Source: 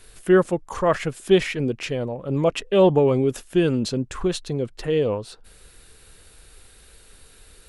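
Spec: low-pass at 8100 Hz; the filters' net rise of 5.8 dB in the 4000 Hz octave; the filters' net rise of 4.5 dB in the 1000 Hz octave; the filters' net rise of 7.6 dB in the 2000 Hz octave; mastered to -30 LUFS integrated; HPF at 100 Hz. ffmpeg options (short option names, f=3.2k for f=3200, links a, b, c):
-af "highpass=100,lowpass=8.1k,equalizer=f=1k:t=o:g=3.5,equalizer=f=2k:t=o:g=7.5,equalizer=f=4k:t=o:g=4.5,volume=-9.5dB"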